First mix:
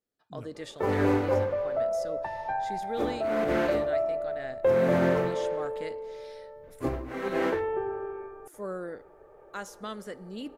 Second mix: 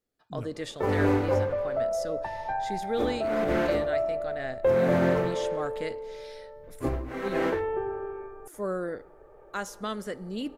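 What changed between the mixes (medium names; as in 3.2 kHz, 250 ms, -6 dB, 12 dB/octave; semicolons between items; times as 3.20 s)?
speech +4.5 dB; master: add bass shelf 63 Hz +9.5 dB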